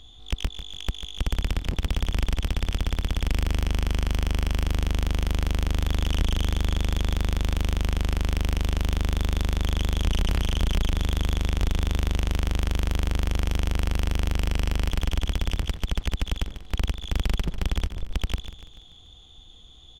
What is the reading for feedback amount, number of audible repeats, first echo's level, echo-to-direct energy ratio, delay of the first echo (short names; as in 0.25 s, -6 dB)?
48%, 4, -12.0 dB, -11.0 dB, 0.145 s